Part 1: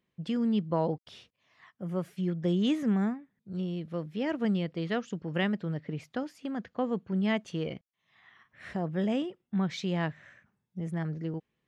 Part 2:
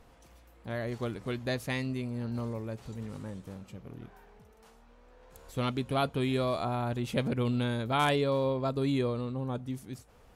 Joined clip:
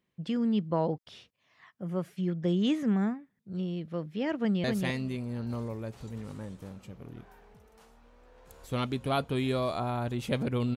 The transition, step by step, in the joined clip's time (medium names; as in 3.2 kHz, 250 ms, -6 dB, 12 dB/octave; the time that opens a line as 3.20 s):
part 1
4.38–4.64 s: echo throw 260 ms, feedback 15%, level -4 dB
4.64 s: go over to part 2 from 1.49 s